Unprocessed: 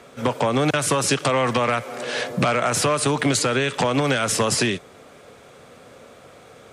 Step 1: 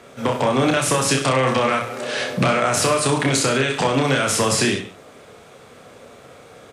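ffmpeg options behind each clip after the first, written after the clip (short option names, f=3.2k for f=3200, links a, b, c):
-af "aecho=1:1:30|63|99.3|139.2|183.2:0.631|0.398|0.251|0.158|0.1"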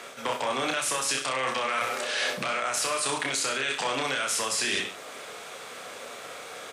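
-af "highpass=f=1.3k:p=1,alimiter=limit=-13.5dB:level=0:latency=1:release=498,areverse,acompressor=threshold=-34dB:ratio=10,areverse,volume=9dB"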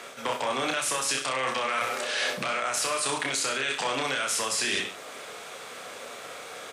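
-af anull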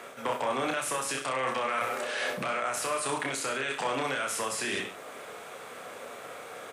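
-af "equalizer=f=4.9k:t=o:w=1.9:g=-9.5"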